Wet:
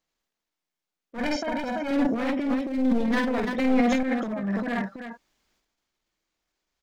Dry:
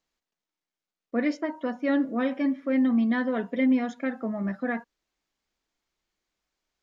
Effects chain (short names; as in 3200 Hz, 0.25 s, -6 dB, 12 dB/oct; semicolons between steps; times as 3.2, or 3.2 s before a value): one-sided fold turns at -23 dBFS; 1.18–1.91 comb 1.3 ms, depth 94%; tapped delay 50/332 ms -5/-8 dB; transient shaper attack -11 dB, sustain +9 dB; 2.59–3.05 bell 1400 Hz -9 dB 1.8 oct; 3.58–4.03 fast leveller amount 50%